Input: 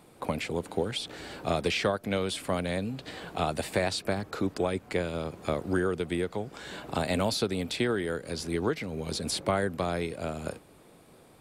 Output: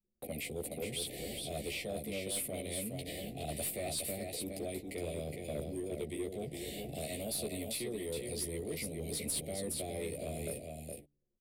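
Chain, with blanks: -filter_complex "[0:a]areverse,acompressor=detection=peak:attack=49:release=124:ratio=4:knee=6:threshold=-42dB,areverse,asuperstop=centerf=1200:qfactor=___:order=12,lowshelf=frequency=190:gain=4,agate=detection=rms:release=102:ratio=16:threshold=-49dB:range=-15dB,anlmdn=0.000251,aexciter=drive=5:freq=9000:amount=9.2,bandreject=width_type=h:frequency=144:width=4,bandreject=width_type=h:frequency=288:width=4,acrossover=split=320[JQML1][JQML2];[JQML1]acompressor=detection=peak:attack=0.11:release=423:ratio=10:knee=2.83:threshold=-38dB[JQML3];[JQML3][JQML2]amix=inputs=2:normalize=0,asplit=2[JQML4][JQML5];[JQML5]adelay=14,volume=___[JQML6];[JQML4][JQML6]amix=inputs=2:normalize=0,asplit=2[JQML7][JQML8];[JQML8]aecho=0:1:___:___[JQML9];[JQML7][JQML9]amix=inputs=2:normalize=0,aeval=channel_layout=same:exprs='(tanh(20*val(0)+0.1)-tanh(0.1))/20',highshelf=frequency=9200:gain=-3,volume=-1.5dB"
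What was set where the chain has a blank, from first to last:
1, -4dB, 416, 0.562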